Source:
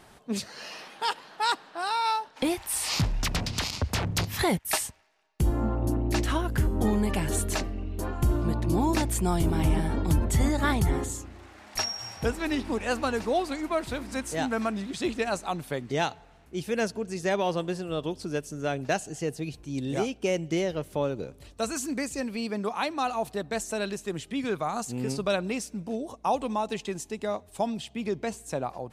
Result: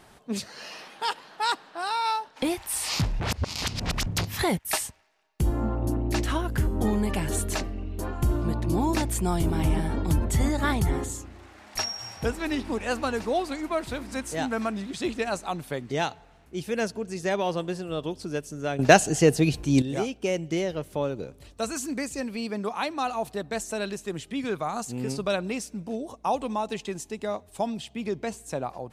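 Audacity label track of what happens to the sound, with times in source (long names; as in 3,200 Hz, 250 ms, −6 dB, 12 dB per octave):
3.200000	4.060000	reverse
18.790000	19.820000	clip gain +12 dB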